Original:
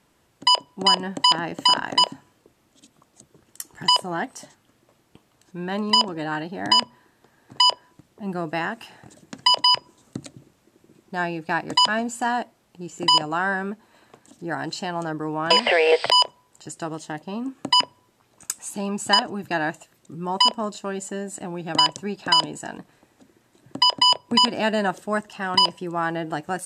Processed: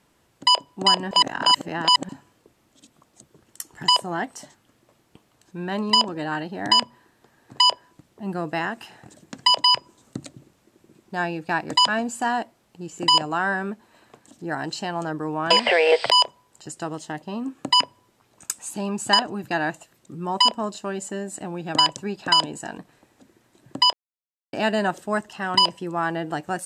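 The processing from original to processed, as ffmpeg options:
ffmpeg -i in.wav -filter_complex "[0:a]asplit=5[link_01][link_02][link_03][link_04][link_05];[link_01]atrim=end=1.112[link_06];[link_02]atrim=start=1.108:end=2.092,asetpts=PTS-STARTPTS,areverse[link_07];[link_03]atrim=start=2.088:end=23.93,asetpts=PTS-STARTPTS,afade=type=out:start_time=21.838:duration=0.004:curve=hsin[link_08];[link_04]atrim=start=23.93:end=24.53,asetpts=PTS-STARTPTS,volume=0[link_09];[link_05]atrim=start=24.53,asetpts=PTS-STARTPTS,afade=type=in:duration=0.004:curve=hsin[link_10];[link_06][link_07]acrossfade=duration=0.004:curve1=hsin:curve2=hsin[link_11];[link_08][link_09][link_10]concat=n=3:v=0:a=1[link_12];[link_11][link_12]acrossfade=duration=0.004:curve1=hsin:curve2=hsin" out.wav

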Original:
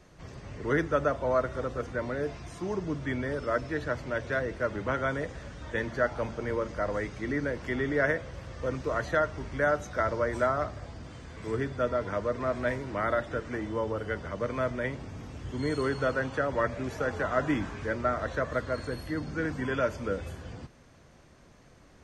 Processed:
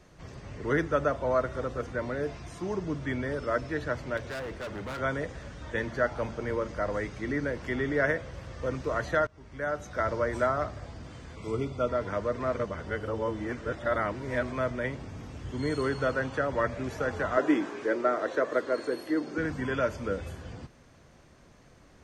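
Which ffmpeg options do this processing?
ffmpeg -i in.wav -filter_complex "[0:a]asettb=1/sr,asplit=3[link_01][link_02][link_03];[link_01]atrim=end=4.174[link_04];[link_02]atrim=start=4.17:end=5,asetpts=PTS-STARTPTS,afade=type=in:duration=0.004:curve=qsin,afade=type=out:start_time=0.826:duration=0.004:curve=qsin,volume=34dB,asoftclip=hard,volume=-34dB[link_05];[link_03]atrim=start=4.996[link_06];[link_04][link_05]acrossfade=duration=0.004:curve1=hsin:curve2=qsin[link_07];[link_07][link_06]acrossfade=duration=0.004:curve1=qsin:curve2=hsin,asettb=1/sr,asplit=3[link_08][link_09][link_10];[link_08]atrim=end=11.354[link_11];[link_09]atrim=start=11.35:end=11.89,asetpts=PTS-STARTPTS,afade=type=in:duration=0.004:curve=qsin,afade=type=out:start_time=0.536:duration=0.004:curve=qsin,asuperstop=centerf=1700:order=20:qfactor=3[link_12];[link_10]atrim=start=11.886[link_13];[link_11][link_12]acrossfade=duration=0.004:curve1=hsin:curve2=qsin[link_14];[link_14][link_13]acrossfade=duration=0.004:curve1=qsin:curve2=hsin,asettb=1/sr,asplit=3[link_15][link_16][link_17];[link_15]atrim=end=17.374[link_18];[link_16]atrim=start=17.37:end=19.38,asetpts=PTS-STARTPTS,afade=type=in:duration=0.004:curve=qsin,afade=type=out:start_time=2.006:duration=0.004:curve=qsin,highpass=frequency=350:width_type=q:width=2.5[link_19];[link_17]atrim=start=19.376[link_20];[link_18][link_19]acrossfade=duration=0.004:curve1=hsin:curve2=qsin[link_21];[link_21][link_20]acrossfade=duration=0.004:curve1=qsin:curve2=hsin,asplit=4[link_22][link_23][link_24][link_25];[link_22]atrim=end=9.27,asetpts=PTS-STARTPTS,afade=type=out:start_time=9.266:duration=0.004:curve=hsin:silence=0.0707946[link_26];[link_23]atrim=start=9.27:end=12.542,asetpts=PTS-STARTPTS,afade=type=in:duration=0.84:silence=0.0707946[link_27];[link_24]atrim=start=12.538:end=14.522,asetpts=PTS-STARTPTS,areverse[link_28];[link_25]atrim=start=14.518[link_29];[link_26][link_27]concat=n=2:v=0:a=1[link_30];[link_30][link_28]acrossfade=duration=0.004:curve1=hsin:curve2=hsin[link_31];[link_31][link_29]acrossfade=duration=0.004:curve1=hsin:curve2=hsin" out.wav

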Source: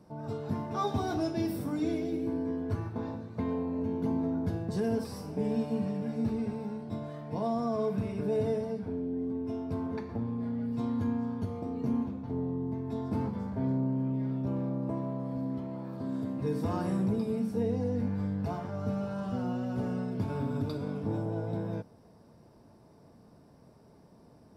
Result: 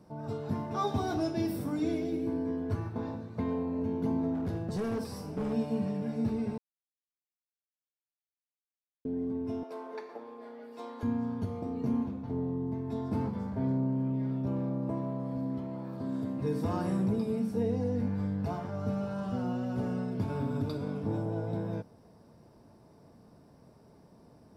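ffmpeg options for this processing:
ffmpeg -i in.wav -filter_complex "[0:a]asettb=1/sr,asplit=3[link_01][link_02][link_03];[link_01]atrim=end=4.344[link_04];[link_02]atrim=start=4.34:end=5.53,asetpts=PTS-STARTPTS,afade=type=in:duration=0.004:curve=qsin,afade=type=out:start_time=1.186:duration=0.004:curve=qsin,asoftclip=type=hard:threshold=-29dB[link_05];[link_03]atrim=start=5.526[link_06];[link_04][link_05]acrossfade=duration=0.004:curve1=hsin:curve2=qsin[link_07];[link_07][link_06]acrossfade=duration=0.004:curve1=qsin:curve2=hsin,asettb=1/sr,asplit=3[link_08][link_09][link_10];[link_08]atrim=end=9.634[link_11];[link_09]atrim=start=9.63:end=11.03,asetpts=PTS-STARTPTS,afade=type=in:duration=0.004:curve=qsin,afade=type=out:start_time=1.396:duration=0.004:curve=qsin,highpass=frequency=400:width=0.5412,highpass=frequency=400:width=1.3066[link_12];[link_10]atrim=start=11.026[link_13];[link_11][link_12]acrossfade=duration=0.004:curve1=hsin:curve2=qsin[link_14];[link_14][link_13]acrossfade=duration=0.004:curve1=qsin:curve2=hsin,asplit=3[link_15][link_16][link_17];[link_15]atrim=end=6.58,asetpts=PTS-STARTPTS,afade=type=out:start_time=6.576:duration=0.004:curve=hsin[link_18];[link_16]atrim=start=6.58:end=9.05,asetpts=PTS-STARTPTS,volume=0[link_19];[link_17]atrim=start=9.05,asetpts=PTS-STARTPTS,afade=type=in:duration=0.004:curve=hsin[link_20];[link_18][link_19][link_20]concat=n=3:v=0:a=1" out.wav

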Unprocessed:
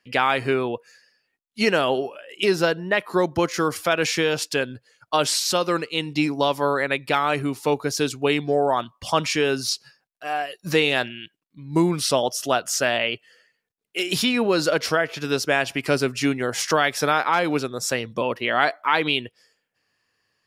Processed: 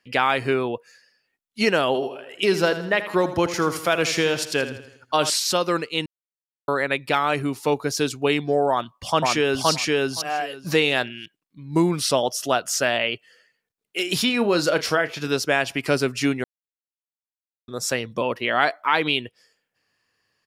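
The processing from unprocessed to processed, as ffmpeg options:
ffmpeg -i in.wav -filter_complex "[0:a]asettb=1/sr,asplit=3[link_01][link_02][link_03];[link_01]atrim=end=1.864[link_04];[link_02]atrim=start=1.86:end=5.3,asetpts=PTS-STARTPTS,afade=type=in:duration=0.004:curve=qsin,afade=type=out:start_time=3.436:duration=0.004:curve=qsin,aecho=1:1:81|162|243|324|405:0.251|0.123|0.0603|0.0296|0.0145,atrim=end_sample=151704[link_05];[link_03]atrim=start=5.296[link_06];[link_04][link_05]acrossfade=duration=0.004:curve1=hsin:curve2=qsin[link_07];[link_07][link_06]acrossfade=duration=0.004:curve1=qsin:curve2=hsin,asplit=2[link_08][link_09];[link_09]afade=type=in:start_time=8.7:duration=0.01,afade=type=out:start_time=9.69:duration=0.01,aecho=0:1:520|1040|1560:0.944061|0.141609|0.0212414[link_10];[link_08][link_10]amix=inputs=2:normalize=0,asettb=1/sr,asplit=3[link_11][link_12][link_13];[link_11]atrim=end=14.264[link_14];[link_12]atrim=start=14.26:end=15.28,asetpts=PTS-STARTPTS,afade=type=in:duration=0.004:curve=qsin,afade=type=out:start_time=1.016:duration=0.004:curve=qsin,asplit=2[link_15][link_16];[link_16]adelay=34,volume=-12dB[link_17];[link_15][link_17]amix=inputs=2:normalize=0,atrim=end_sample=44982[link_18];[link_13]atrim=start=15.276[link_19];[link_14][link_18]acrossfade=duration=0.004:curve1=hsin:curve2=qsin[link_20];[link_20][link_19]acrossfade=duration=0.004:curve1=qsin:curve2=hsin,asplit=5[link_21][link_22][link_23][link_24][link_25];[link_21]atrim=end=6.06,asetpts=PTS-STARTPTS,afade=type=out:start_time=6.056:duration=0.004:curve=hsin[link_26];[link_22]atrim=start=6.06:end=6.68,asetpts=PTS-STARTPTS,volume=0[link_27];[link_23]atrim=start=6.68:end=16.44,asetpts=PTS-STARTPTS,afade=type=in:duration=0.004:curve=hsin,afade=type=out:start_time=9.756:duration=0.004:curve=hsin[link_28];[link_24]atrim=start=16.44:end=17.68,asetpts=PTS-STARTPTS,volume=0[link_29];[link_25]atrim=start=17.68,asetpts=PTS-STARTPTS,afade=type=in:duration=0.004:curve=hsin[link_30];[link_26][link_27][link_28][link_29][link_30]concat=n=5:v=0:a=1" out.wav

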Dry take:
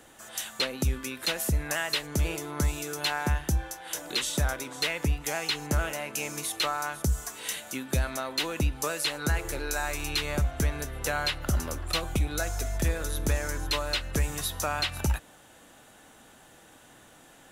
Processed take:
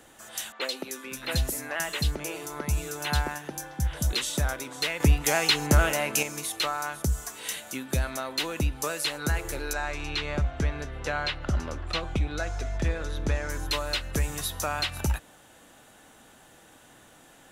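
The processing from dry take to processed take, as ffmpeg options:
ffmpeg -i in.wav -filter_complex "[0:a]asettb=1/sr,asplit=3[link_01][link_02][link_03];[link_01]atrim=end=0.524[link_04];[link_02]atrim=start=0.52:end=4.13,asetpts=PTS-STARTPTS,afade=type=in:duration=0.004:curve=qsin,afade=type=out:start_time=3.606:duration=0.004:curve=qsin,acrossover=split=260|3400[link_05][link_06][link_07];[link_07]adelay=90[link_08];[link_05]adelay=520[link_09];[link_09][link_06][link_08]amix=inputs=3:normalize=0,atrim=end_sample=159201[link_10];[link_03]atrim=start=4.126[link_11];[link_04][link_10]acrossfade=duration=0.004:curve1=hsin:curve2=qsin[link_12];[link_12][link_11]acrossfade=duration=0.004:curve1=qsin:curve2=hsin,asettb=1/sr,asplit=3[link_13][link_14][link_15];[link_13]atrim=end=5.004[link_16];[link_14]atrim=start=5:end=6.23,asetpts=PTS-STARTPTS,afade=type=in:duration=0.004:curve=qsin,afade=type=out:start_time=1.226:duration=0.004:curve=qsin,acontrast=83[link_17];[link_15]atrim=start=6.226[link_18];[link_16][link_17]acrossfade=duration=0.004:curve1=hsin:curve2=qsin[link_19];[link_19][link_18]acrossfade=duration=0.004:curve1=qsin:curve2=hsin,asettb=1/sr,asplit=3[link_20][link_21][link_22];[link_20]atrim=end=9.734[link_23];[link_21]atrim=start=9.73:end=13.5,asetpts=PTS-STARTPTS,afade=type=in:duration=0.004:curve=qsin,afade=type=out:start_time=3.766:duration=0.004:curve=qsin,lowpass=4300[link_24];[link_22]atrim=start=13.496[link_25];[link_23][link_24]acrossfade=duration=0.004:curve1=hsin:curve2=qsin[link_26];[link_26][link_25]acrossfade=duration=0.004:curve1=qsin:curve2=hsin" out.wav

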